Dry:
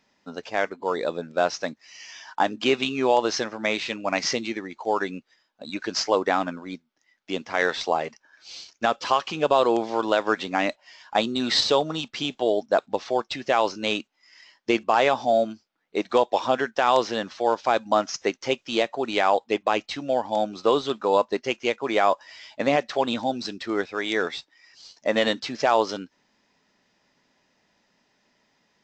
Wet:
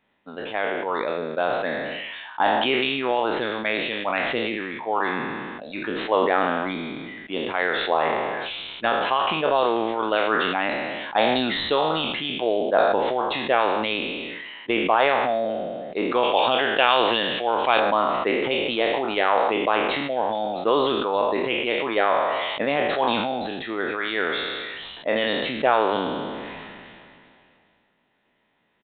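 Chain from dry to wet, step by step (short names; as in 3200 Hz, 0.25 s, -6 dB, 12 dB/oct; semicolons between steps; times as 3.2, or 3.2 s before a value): spectral trails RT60 0.79 s; 16.23–17.8 bell 2900 Hz +11.5 dB 0.88 oct; harmonic-percussive split harmonic -6 dB; downsampling 8000 Hz; sustainer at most 23 dB/s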